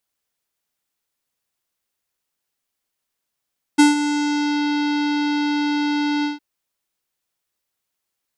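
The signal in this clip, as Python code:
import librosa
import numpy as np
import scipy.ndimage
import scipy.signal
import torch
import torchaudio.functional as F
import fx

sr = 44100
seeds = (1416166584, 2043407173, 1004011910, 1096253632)

y = fx.sub_voice(sr, note=62, wave='square', cutoff_hz=4800.0, q=1.4, env_oct=1.0, env_s=0.85, attack_ms=16.0, decay_s=0.15, sustain_db=-11.0, release_s=0.15, note_s=2.46, slope=24)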